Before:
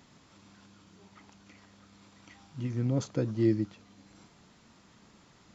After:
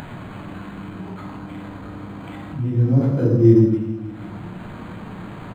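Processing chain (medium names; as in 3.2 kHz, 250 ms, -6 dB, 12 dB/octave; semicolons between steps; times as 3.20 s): 1.07–3.61 s: treble shelf 3.6 kHz -11.5 dB; reverberation RT60 0.75 s, pre-delay 12 ms, DRR -5 dB; upward compressor, threshold -24 dBFS; peaking EQ 2.1 kHz -4 dB 0.24 oct; speakerphone echo 90 ms, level -9 dB; decimation joined by straight lines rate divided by 8×; trim +2.5 dB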